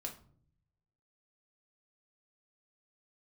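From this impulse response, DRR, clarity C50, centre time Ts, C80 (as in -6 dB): 0.5 dB, 11.0 dB, 15 ms, 16.5 dB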